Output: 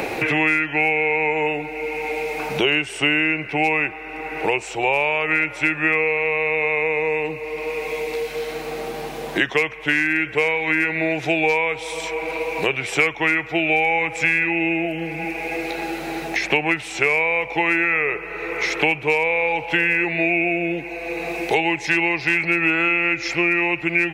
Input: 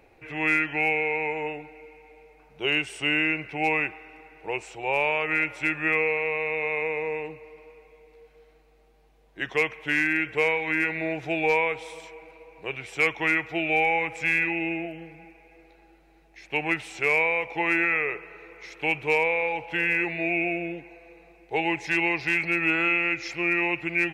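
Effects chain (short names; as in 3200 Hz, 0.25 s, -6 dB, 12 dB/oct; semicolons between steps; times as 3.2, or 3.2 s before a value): three-band squash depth 100%; gain +5 dB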